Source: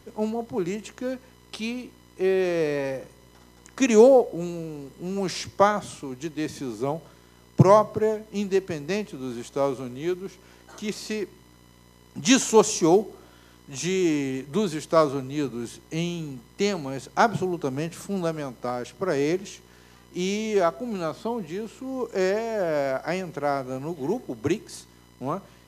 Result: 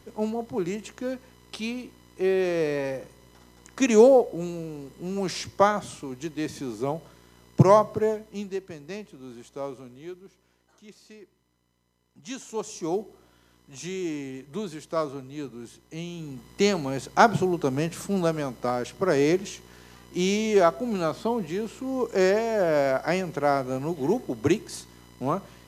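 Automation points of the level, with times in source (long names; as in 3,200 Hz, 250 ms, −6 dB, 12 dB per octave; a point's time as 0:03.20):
0:08.11 −1 dB
0:08.59 −9.5 dB
0:09.78 −9.5 dB
0:10.84 −18.5 dB
0:12.35 −18.5 dB
0:13.01 −8 dB
0:16.06 −8 dB
0:16.49 +2.5 dB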